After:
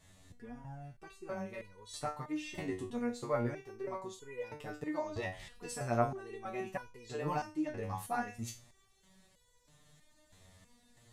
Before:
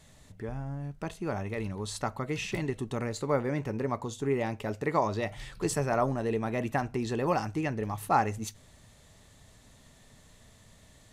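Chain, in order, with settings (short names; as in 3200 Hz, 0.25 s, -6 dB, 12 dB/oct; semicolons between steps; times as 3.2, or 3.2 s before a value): stepped resonator 3.1 Hz 93–490 Hz; gain +4.5 dB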